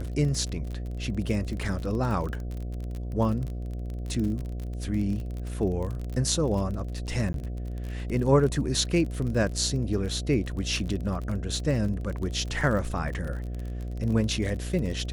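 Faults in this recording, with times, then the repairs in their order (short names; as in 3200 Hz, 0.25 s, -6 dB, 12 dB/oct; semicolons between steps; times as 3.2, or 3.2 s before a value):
buzz 60 Hz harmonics 12 -33 dBFS
crackle 35/s -32 dBFS
7.33–7.34 gap 12 ms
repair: de-click; de-hum 60 Hz, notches 12; interpolate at 7.33, 12 ms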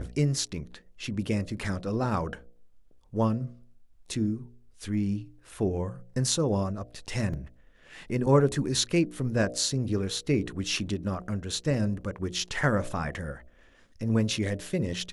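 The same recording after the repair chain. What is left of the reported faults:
none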